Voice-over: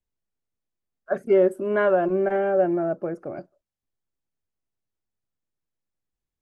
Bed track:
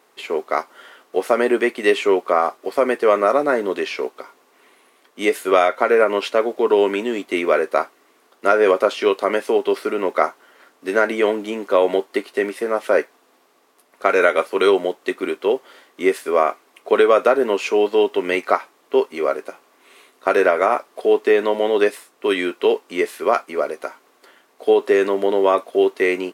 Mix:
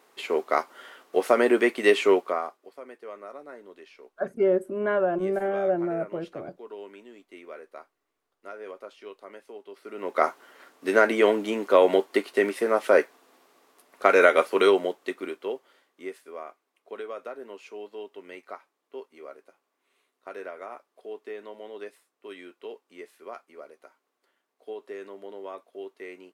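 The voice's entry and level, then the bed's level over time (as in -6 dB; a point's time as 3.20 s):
3.10 s, -4.0 dB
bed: 2.13 s -3 dB
2.77 s -25.5 dB
9.72 s -25.5 dB
10.28 s -2 dB
14.49 s -2 dB
16.40 s -23 dB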